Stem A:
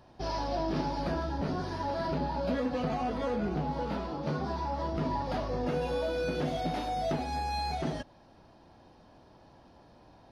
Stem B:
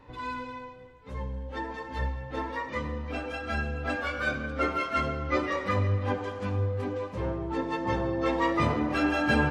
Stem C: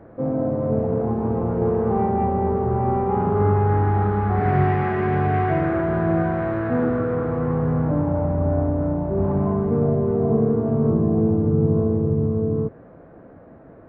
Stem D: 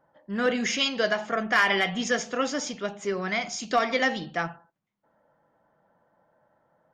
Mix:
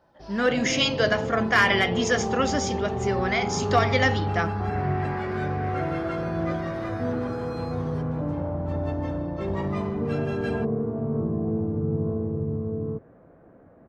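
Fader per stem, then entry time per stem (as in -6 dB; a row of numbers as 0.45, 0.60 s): -10.0, -10.0, -7.5, +2.0 dB; 0.00, 1.15, 0.30, 0.00 s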